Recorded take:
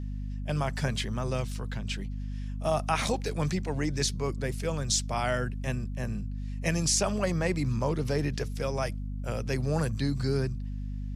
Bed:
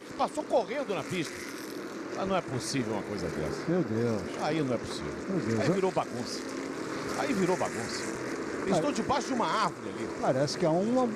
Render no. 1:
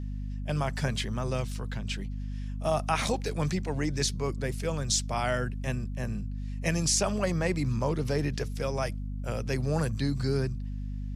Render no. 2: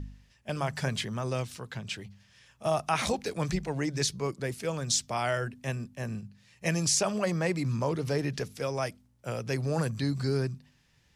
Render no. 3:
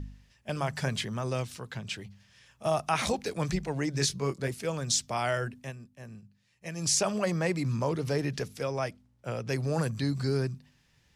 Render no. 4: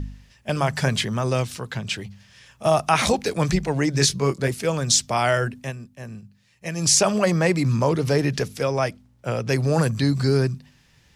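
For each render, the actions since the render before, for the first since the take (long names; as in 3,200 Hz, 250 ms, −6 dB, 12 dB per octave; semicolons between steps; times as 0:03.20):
no processing that can be heard
hum removal 50 Hz, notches 5
0:03.92–0:04.48: double-tracking delay 22 ms −6 dB; 0:05.57–0:06.91: duck −10.5 dB, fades 0.16 s; 0:08.63–0:09.49: high-shelf EQ 7,800 Hz −12 dB
level +9 dB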